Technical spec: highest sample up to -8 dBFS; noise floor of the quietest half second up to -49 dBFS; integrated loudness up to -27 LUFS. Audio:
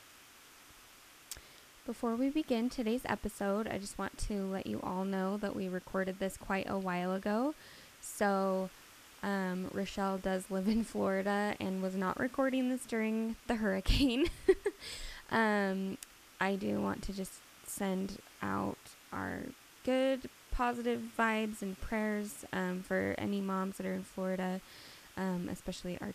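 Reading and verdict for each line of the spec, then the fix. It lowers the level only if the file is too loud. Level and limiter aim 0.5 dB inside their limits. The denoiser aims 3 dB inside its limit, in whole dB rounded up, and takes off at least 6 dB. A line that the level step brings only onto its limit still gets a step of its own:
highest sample -15.5 dBFS: OK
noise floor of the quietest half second -58 dBFS: OK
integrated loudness -35.5 LUFS: OK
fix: none

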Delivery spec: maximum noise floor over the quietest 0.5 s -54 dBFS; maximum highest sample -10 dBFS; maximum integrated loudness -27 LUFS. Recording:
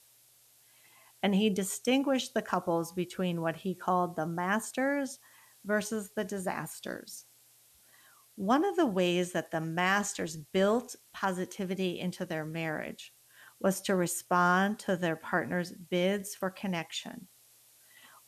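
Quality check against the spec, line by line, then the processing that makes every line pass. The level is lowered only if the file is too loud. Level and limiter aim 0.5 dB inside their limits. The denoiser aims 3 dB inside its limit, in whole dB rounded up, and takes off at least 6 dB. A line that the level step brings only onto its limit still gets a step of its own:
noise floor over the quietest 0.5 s -63 dBFS: OK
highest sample -14.5 dBFS: OK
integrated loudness -31.5 LUFS: OK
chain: none

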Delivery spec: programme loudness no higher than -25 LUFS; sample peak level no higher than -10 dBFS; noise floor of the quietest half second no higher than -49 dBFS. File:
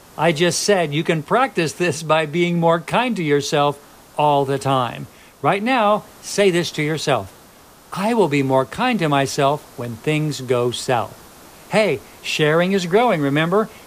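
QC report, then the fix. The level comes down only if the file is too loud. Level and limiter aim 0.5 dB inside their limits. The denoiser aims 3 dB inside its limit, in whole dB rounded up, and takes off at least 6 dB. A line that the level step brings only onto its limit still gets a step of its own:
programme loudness -19.0 LUFS: fail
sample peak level -4.5 dBFS: fail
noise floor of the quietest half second -46 dBFS: fail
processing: gain -6.5 dB

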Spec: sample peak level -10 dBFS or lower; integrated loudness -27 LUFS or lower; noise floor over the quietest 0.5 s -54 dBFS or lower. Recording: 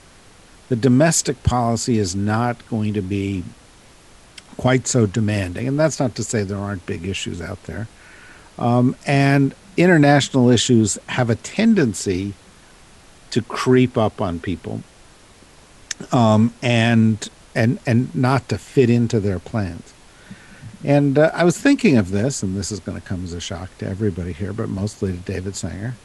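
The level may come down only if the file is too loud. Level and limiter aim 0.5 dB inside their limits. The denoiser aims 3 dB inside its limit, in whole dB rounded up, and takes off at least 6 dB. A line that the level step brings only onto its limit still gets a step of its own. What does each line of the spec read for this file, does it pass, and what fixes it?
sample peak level -3.0 dBFS: fail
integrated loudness -19.0 LUFS: fail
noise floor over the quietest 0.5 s -47 dBFS: fail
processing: gain -8.5 dB

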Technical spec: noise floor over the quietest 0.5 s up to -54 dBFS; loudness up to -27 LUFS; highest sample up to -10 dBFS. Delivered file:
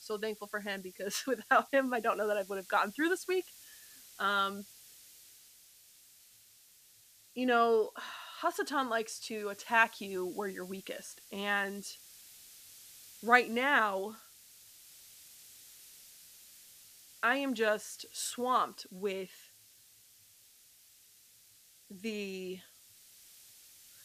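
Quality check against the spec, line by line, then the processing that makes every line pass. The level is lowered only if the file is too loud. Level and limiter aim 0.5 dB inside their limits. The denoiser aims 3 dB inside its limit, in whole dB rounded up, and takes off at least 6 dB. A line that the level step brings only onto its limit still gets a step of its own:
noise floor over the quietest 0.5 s -62 dBFS: OK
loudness -33.0 LUFS: OK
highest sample -11.5 dBFS: OK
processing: none

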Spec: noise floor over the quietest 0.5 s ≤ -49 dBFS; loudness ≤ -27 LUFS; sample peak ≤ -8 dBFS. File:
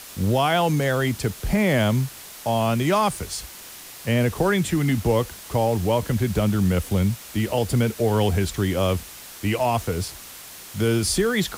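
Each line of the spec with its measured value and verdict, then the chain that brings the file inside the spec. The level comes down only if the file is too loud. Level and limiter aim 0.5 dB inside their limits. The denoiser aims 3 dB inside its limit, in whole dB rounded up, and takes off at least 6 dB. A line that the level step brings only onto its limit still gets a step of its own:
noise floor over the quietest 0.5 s -41 dBFS: fail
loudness -23.0 LUFS: fail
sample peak -8.5 dBFS: OK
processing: denoiser 7 dB, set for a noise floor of -41 dBFS; gain -4.5 dB

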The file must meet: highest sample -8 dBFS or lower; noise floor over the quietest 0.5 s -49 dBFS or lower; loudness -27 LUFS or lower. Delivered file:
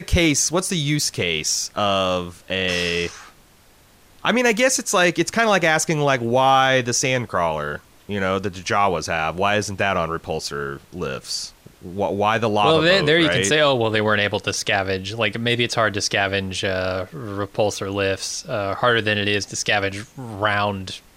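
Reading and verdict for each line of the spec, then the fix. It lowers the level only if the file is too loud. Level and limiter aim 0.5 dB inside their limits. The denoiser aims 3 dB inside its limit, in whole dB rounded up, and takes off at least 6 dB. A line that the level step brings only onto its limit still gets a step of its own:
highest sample -4.5 dBFS: fail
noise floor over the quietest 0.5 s -52 dBFS: OK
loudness -20.0 LUFS: fail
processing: gain -7.5 dB

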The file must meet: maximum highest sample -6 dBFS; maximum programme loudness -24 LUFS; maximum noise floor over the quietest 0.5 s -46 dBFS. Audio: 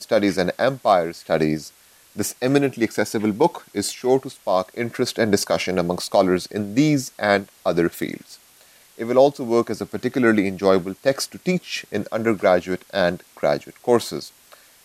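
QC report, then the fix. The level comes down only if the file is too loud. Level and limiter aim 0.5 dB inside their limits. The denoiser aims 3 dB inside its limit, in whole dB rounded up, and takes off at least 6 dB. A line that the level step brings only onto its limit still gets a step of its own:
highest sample -2.0 dBFS: fail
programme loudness -21.5 LUFS: fail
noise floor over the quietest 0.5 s -52 dBFS: OK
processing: gain -3 dB; limiter -6.5 dBFS

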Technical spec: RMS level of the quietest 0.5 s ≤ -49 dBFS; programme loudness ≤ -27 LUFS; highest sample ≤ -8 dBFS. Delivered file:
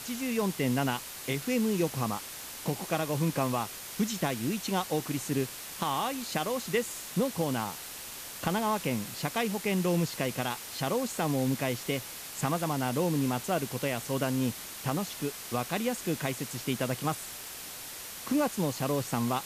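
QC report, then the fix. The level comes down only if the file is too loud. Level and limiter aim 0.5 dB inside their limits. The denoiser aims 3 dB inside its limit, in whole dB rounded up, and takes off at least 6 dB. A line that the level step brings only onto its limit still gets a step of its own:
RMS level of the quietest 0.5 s -42 dBFS: fail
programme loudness -31.5 LUFS: OK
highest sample -16.0 dBFS: OK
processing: denoiser 10 dB, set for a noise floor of -42 dBFS

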